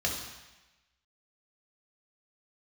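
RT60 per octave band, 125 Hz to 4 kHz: 1.0, 1.0, 1.0, 1.1, 1.2, 1.1 s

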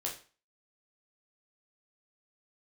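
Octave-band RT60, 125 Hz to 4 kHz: 0.35, 0.35, 0.35, 0.40, 0.35, 0.35 s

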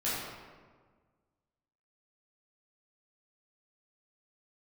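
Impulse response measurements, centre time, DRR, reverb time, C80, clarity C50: 0.101 s, -10.5 dB, 1.5 s, 1.0 dB, -2.0 dB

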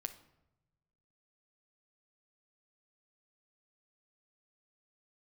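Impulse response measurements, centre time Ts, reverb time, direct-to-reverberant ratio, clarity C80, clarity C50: 7 ms, 0.95 s, 8.5 dB, 16.5 dB, 13.0 dB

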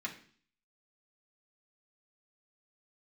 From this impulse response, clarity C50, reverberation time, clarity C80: 11.0 dB, 0.50 s, 15.0 dB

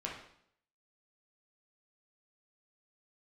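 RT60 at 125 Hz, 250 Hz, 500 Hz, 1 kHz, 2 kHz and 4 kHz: 0.70, 0.70, 0.70, 0.65, 0.60, 0.60 s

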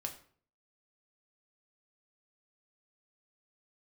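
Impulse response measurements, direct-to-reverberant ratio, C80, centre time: 3.0 dB, 15.0 dB, 13 ms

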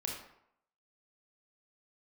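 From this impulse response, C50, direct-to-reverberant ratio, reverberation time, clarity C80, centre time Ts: 3.0 dB, -0.5 dB, 0.75 s, 6.5 dB, 41 ms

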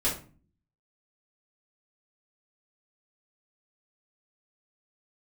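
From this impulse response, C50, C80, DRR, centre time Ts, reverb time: 7.5 dB, 13.5 dB, -8.5 dB, 28 ms, 0.40 s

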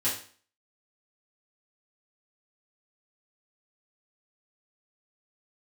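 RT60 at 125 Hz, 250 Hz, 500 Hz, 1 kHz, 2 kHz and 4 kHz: 0.40, 0.45, 0.45, 0.45, 0.45, 0.40 s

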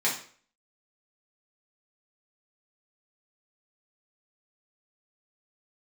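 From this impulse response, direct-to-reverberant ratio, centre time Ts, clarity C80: -6.5 dB, 27 ms, 11.5 dB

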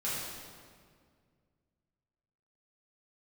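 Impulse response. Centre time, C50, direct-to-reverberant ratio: 0.114 s, -1.5 dB, -10.0 dB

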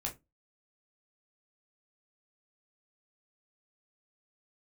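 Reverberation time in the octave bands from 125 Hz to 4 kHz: 0.30, 0.30, 0.20, 0.20, 0.15, 0.15 s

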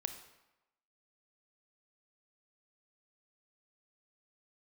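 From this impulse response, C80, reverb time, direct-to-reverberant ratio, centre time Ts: 11.5 dB, 1.0 s, 7.5 dB, 15 ms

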